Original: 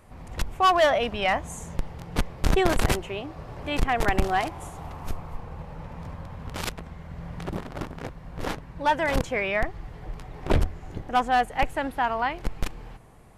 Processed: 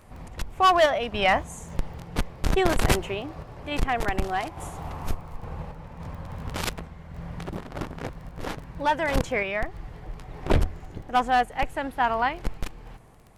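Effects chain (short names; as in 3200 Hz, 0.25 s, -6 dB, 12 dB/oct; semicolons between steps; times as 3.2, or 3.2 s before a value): crackle 14/s -40 dBFS; random-step tremolo; gain +3 dB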